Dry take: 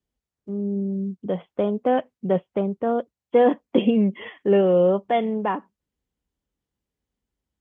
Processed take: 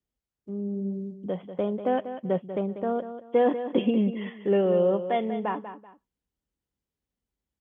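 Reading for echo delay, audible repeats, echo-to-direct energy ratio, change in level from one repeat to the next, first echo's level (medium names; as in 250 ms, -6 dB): 192 ms, 2, -10.5 dB, -11.0 dB, -11.0 dB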